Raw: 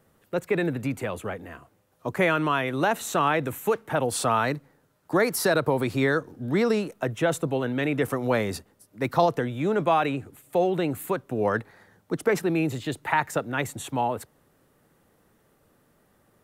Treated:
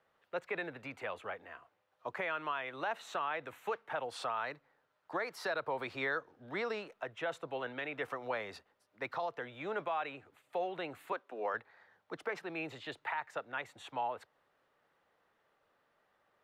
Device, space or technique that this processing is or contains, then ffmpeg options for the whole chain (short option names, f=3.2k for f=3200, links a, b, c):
DJ mixer with the lows and highs turned down: -filter_complex "[0:a]asettb=1/sr,asplit=3[a][b][c];[a]atrim=end=11.124[d];[b]atrim=start=11.12:end=11.54,asetpts=PTS-STARTPTS,afade=t=in:d=0.004:c=qsin,afade=t=out:st=0.416:d=0.004:c=qsin,highpass=f=230:w=0.5412,highpass=f=230:w=1.3066[e];[c]atrim=start=11.536[f];[d][e]acrossfade=d=0.004:c1=hsin:c2=qsin[g];[g][f]acrossfade=d=0.004:c1=qsin:c2=hsin,acrossover=split=530 4500:gain=0.126 1 0.0794[h][i][j];[h][i][j]amix=inputs=3:normalize=0,alimiter=limit=-20.5dB:level=0:latency=1:release=363,volume=-5.5dB"